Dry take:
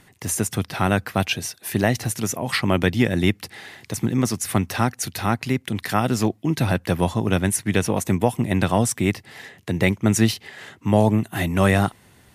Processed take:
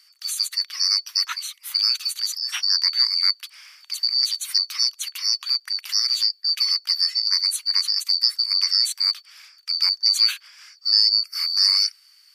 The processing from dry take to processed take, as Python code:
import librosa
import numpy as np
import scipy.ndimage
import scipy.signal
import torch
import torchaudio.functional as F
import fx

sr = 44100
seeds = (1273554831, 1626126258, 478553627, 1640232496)

y = fx.band_shuffle(x, sr, order='2341')
y = scipy.signal.sosfilt(scipy.signal.bessel(6, 2100.0, 'highpass', norm='mag', fs=sr, output='sos'), y)
y = fx.peak_eq(y, sr, hz=9400.0, db=-6.0, octaves=1.4)
y = F.gain(torch.from_numpy(y), 2.0).numpy()